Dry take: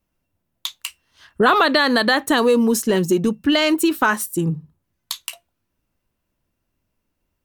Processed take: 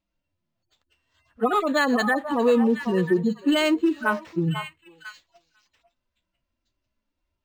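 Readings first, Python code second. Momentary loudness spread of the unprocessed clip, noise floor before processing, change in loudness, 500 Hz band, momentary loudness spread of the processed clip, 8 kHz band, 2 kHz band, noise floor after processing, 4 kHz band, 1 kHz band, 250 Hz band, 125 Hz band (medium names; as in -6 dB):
16 LU, -76 dBFS, -5.0 dB, -4.0 dB, 7 LU, -15.0 dB, -6.5 dB, -82 dBFS, -10.0 dB, -6.5 dB, -3.5 dB, -3.0 dB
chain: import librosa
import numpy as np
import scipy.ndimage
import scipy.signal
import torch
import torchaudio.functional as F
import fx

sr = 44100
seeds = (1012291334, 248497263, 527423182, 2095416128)

y = fx.hpss_only(x, sr, part='harmonic')
y = fx.echo_stepped(y, sr, ms=496, hz=870.0, octaves=1.4, feedback_pct=70, wet_db=-6.0)
y = np.interp(np.arange(len(y)), np.arange(len(y))[::4], y[::4])
y = F.gain(torch.from_numpy(y), -3.0).numpy()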